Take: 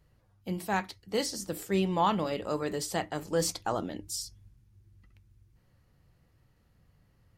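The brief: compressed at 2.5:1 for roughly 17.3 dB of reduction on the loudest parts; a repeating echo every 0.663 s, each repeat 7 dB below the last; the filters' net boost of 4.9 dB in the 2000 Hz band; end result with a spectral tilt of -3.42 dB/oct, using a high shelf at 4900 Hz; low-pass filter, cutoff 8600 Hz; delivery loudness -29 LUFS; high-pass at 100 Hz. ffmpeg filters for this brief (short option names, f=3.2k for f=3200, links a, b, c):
-af "highpass=100,lowpass=8.6k,equalizer=f=2k:t=o:g=5.5,highshelf=f=4.9k:g=4.5,acompressor=threshold=-49dB:ratio=2.5,aecho=1:1:663|1326|1989|2652|3315:0.447|0.201|0.0905|0.0407|0.0183,volume=16.5dB"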